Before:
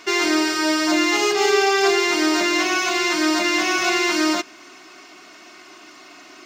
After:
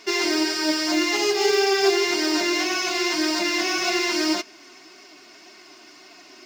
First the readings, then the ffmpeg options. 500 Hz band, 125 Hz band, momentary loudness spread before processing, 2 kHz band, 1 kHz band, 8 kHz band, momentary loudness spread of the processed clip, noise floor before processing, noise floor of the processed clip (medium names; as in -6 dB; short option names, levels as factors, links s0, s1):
-2.0 dB, no reading, 3 LU, -4.5 dB, -5.5 dB, -2.5 dB, 3 LU, -45 dBFS, -48 dBFS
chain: -af "acrusher=bits=6:mode=log:mix=0:aa=0.000001,flanger=delay=4.2:depth=4.6:regen=57:speed=1.8:shape=triangular,equalizer=f=400:t=o:w=0.33:g=3,equalizer=f=1250:t=o:w=0.33:g=-6,equalizer=f=5000:t=o:w=0.33:g=7"